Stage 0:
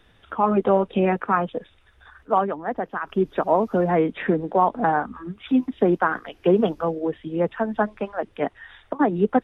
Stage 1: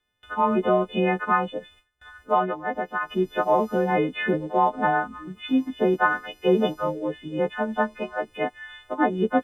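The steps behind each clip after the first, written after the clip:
every partial snapped to a pitch grid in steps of 3 semitones
noise gate with hold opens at −41 dBFS
level −2 dB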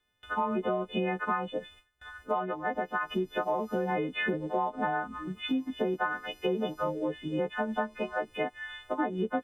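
downward compressor 6 to 1, threshold −27 dBFS, peak gain reduction 12 dB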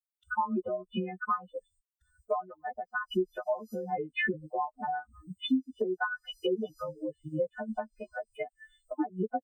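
spectral dynamics exaggerated over time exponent 3
level +4.5 dB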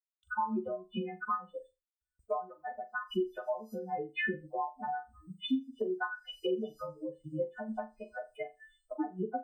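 noise gate with hold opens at −59 dBFS
flutter between parallel walls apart 7 metres, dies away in 0.23 s
level −3.5 dB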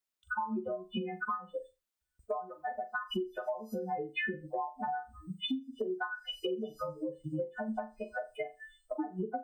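downward compressor 4 to 1, threshold −39 dBFS, peak gain reduction 11.5 dB
level +6 dB

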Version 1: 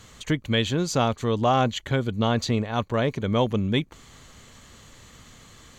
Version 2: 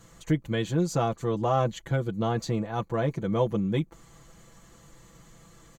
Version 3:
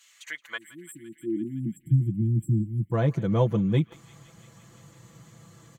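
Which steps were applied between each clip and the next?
parametric band 3,200 Hz −10 dB 1.9 octaves; comb filter 6 ms, depth 81%; level −4 dB
time-frequency box erased 0:00.58–0:02.92, 350–7,400 Hz; high-pass filter sweep 2,600 Hz → 110 Hz, 0:00.10–0:01.99; feedback echo with a band-pass in the loop 170 ms, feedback 80%, band-pass 2,700 Hz, level −17 dB

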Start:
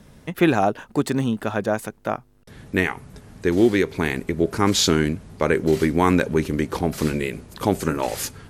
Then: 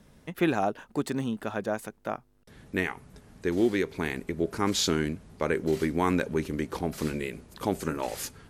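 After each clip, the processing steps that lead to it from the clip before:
parametric band 110 Hz −4 dB 0.66 octaves
level −7.5 dB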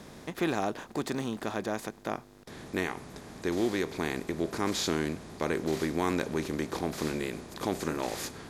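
compressor on every frequency bin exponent 0.6
on a send at −22 dB: convolution reverb, pre-delay 3 ms
on the sum: level −6.5 dB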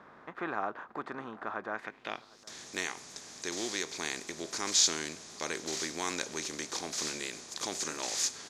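spectral tilt +3.5 dB per octave
low-pass filter sweep 1,300 Hz → 6,400 Hz, 0:01.68–0:02.45
slap from a distant wall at 130 metres, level −22 dB
level −5 dB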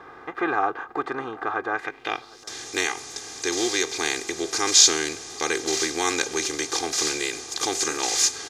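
comb filter 2.5 ms, depth 79%
level +8.5 dB

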